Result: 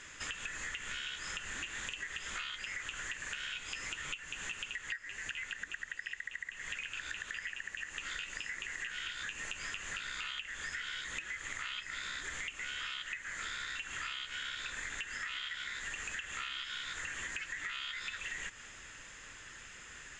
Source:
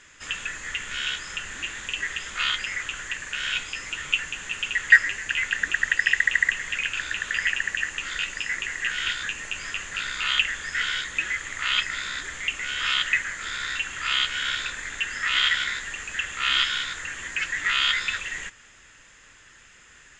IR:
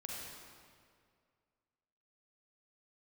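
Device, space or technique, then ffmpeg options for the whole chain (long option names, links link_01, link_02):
serial compression, peaks first: -af "acompressor=threshold=-34dB:ratio=5,acompressor=threshold=-40dB:ratio=3,volume=1dB"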